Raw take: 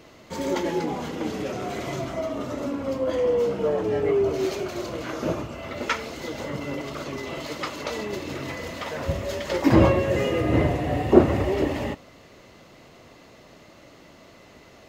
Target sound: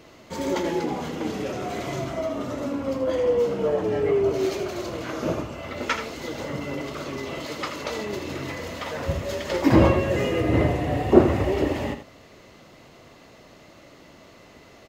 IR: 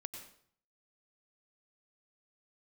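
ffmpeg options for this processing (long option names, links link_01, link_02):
-af "aecho=1:1:81:0.316"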